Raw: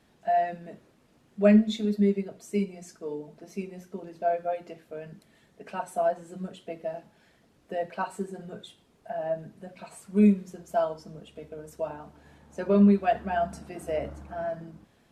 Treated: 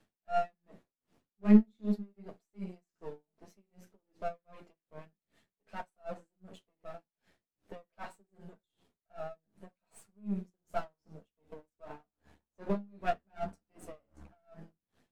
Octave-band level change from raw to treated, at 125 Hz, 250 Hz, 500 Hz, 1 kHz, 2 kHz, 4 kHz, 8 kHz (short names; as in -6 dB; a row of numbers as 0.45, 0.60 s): -9.0, -7.5, -13.0, -9.5, -10.5, -13.5, -14.5 dB